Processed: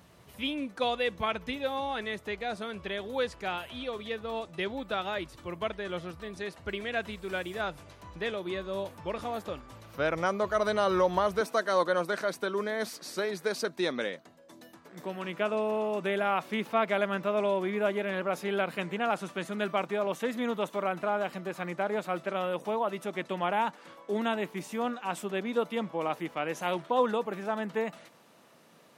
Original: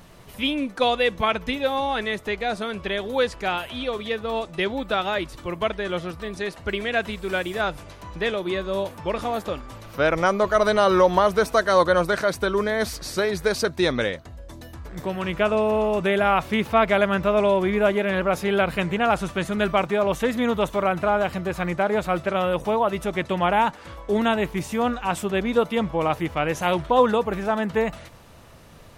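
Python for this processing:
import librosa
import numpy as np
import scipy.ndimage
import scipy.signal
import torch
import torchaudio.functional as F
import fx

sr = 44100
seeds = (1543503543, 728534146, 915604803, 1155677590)

y = fx.highpass(x, sr, hz=fx.steps((0.0, 55.0), (11.41, 180.0)), slope=24)
y = y * librosa.db_to_amplitude(-8.5)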